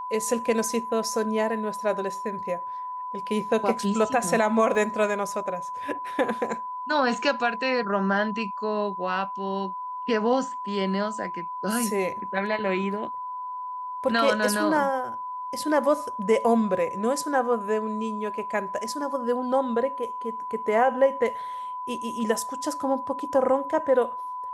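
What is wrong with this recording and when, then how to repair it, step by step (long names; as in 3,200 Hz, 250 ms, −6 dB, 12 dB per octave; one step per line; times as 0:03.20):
whistle 1,000 Hz −31 dBFS
0:04.75: drop-out 2 ms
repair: notch filter 1,000 Hz, Q 30
repair the gap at 0:04.75, 2 ms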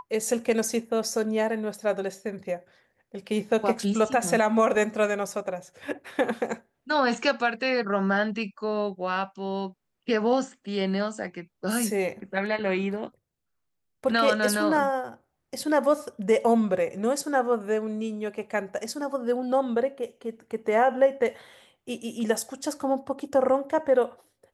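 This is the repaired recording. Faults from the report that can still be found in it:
none of them is left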